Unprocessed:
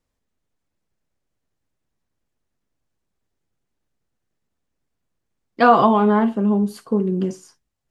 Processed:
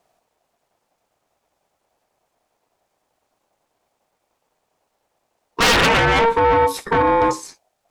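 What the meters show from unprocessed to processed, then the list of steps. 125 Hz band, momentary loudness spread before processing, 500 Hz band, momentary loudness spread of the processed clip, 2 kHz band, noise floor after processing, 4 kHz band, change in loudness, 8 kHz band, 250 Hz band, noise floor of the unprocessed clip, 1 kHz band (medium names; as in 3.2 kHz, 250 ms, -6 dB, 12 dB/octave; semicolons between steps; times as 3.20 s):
0.0 dB, 9 LU, +2.0 dB, 5 LU, +9.5 dB, -74 dBFS, +17.0 dB, +2.0 dB, no reading, -7.5 dB, -78 dBFS, +2.5 dB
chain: Chebyshev shaper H 7 -6 dB, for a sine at -1.5 dBFS; ring modulator 690 Hz; saturation -17 dBFS, distortion -7 dB; trim +6.5 dB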